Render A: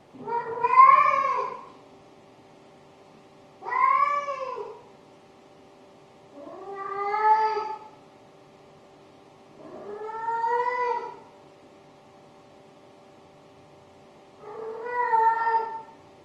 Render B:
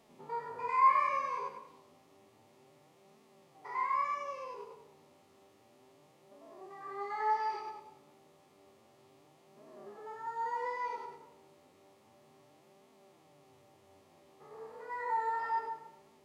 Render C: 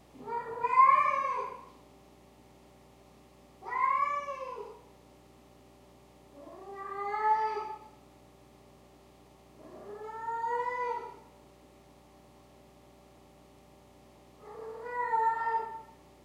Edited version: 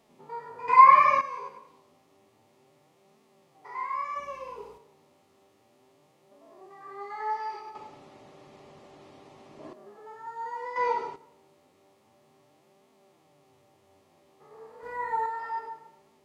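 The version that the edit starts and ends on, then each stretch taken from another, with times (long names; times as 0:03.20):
B
0:00.68–0:01.21: punch in from A
0:04.16–0:04.78: punch in from C
0:07.75–0:09.73: punch in from A
0:10.76–0:11.16: punch in from A
0:14.83–0:15.26: punch in from C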